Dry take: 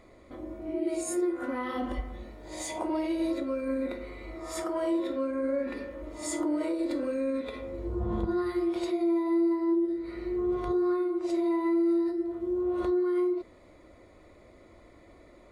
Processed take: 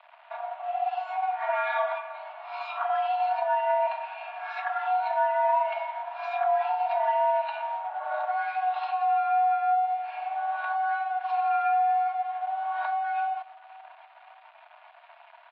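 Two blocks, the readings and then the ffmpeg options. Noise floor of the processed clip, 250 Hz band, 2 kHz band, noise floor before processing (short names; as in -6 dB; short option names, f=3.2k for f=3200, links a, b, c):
-54 dBFS, under -40 dB, +10.5 dB, -55 dBFS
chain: -filter_complex "[0:a]aecho=1:1:3.9:0.96,asplit=2[a][b];[b]acompressor=threshold=-39dB:ratio=6,volume=2dB[c];[a][c]amix=inputs=2:normalize=0,aeval=exprs='sgn(val(0))*max(abs(val(0))-0.00531,0)':c=same,asplit=2[d][e];[e]adelay=542,lowpass=f=1.4k:p=1,volume=-22dB,asplit=2[f][g];[g]adelay=542,lowpass=f=1.4k:p=1,volume=0.47,asplit=2[h][i];[i]adelay=542,lowpass=f=1.4k:p=1,volume=0.47[j];[d][f][h][j]amix=inputs=4:normalize=0,highpass=f=220:t=q:w=0.5412,highpass=f=220:t=q:w=1.307,lowpass=f=3.2k:t=q:w=0.5176,lowpass=f=3.2k:t=q:w=0.7071,lowpass=f=3.2k:t=q:w=1.932,afreqshift=400" -ar 44100 -c:a libmp3lame -b:a 40k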